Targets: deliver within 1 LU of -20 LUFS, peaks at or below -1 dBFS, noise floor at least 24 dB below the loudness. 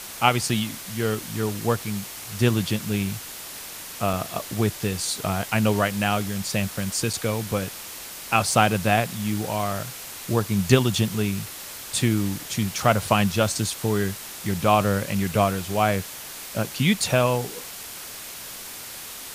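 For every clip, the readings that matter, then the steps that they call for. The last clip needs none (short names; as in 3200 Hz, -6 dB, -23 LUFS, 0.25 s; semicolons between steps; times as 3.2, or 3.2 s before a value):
dropouts 2; longest dropout 4.8 ms; noise floor -38 dBFS; noise floor target -49 dBFS; loudness -24.5 LUFS; peak -2.0 dBFS; loudness target -20.0 LUFS
-> interpolate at 4.13/7.13, 4.8 ms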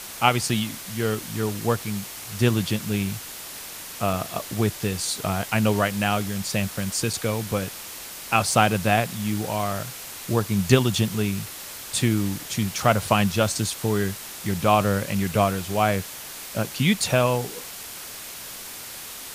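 dropouts 0; noise floor -38 dBFS; noise floor target -49 dBFS
-> noise print and reduce 11 dB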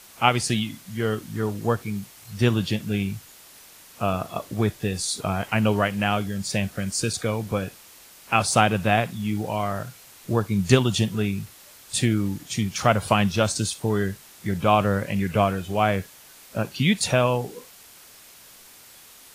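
noise floor -49 dBFS; loudness -24.5 LUFS; peak -2.0 dBFS; loudness target -20.0 LUFS
-> gain +4.5 dB; limiter -1 dBFS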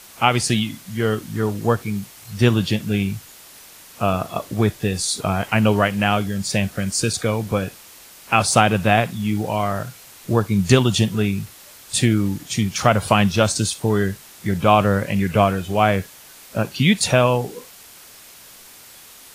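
loudness -20.0 LUFS; peak -1.0 dBFS; noise floor -44 dBFS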